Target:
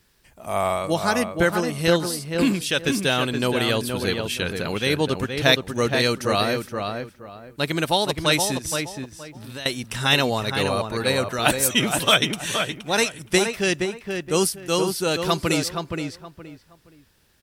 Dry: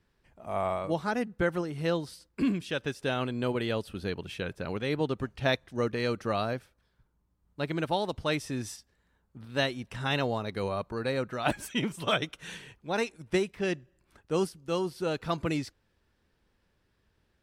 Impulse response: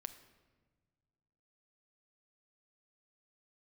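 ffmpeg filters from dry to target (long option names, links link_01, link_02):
-filter_complex "[0:a]asettb=1/sr,asplit=3[link_01][link_02][link_03];[link_01]atrim=end=8.574[link_04];[link_02]atrim=start=8.57:end=9.66,asetpts=PTS-STARTPTS,afade=type=in:duration=0.004:curve=qsin,afade=type=out:start_time=1.086:duration=0.004:curve=qsin,acompressor=threshold=-41dB:ratio=16[link_05];[link_03]atrim=start=9.656[link_06];[link_04][link_05]acrossfade=duration=0.004:curve1=hsin:curve2=qsin[link_07];[link_07][link_06]acrossfade=duration=0.004:curve1=qsin:curve2=hsin,asplit=2[link_08][link_09];[link_09]adelay=471,lowpass=frequency=2200:poles=1,volume=-5dB,asplit=2[link_10][link_11];[link_11]adelay=471,lowpass=frequency=2200:poles=1,volume=0.26,asplit=2[link_12][link_13];[link_13]adelay=471,lowpass=frequency=2200:poles=1,volume=0.26[link_14];[link_10][link_12][link_14]amix=inputs=3:normalize=0[link_15];[link_08][link_15]amix=inputs=2:normalize=0,crystalizer=i=4.5:c=0,volume=6.5dB" -ar 44100 -c:a libmp3lame -b:a 128k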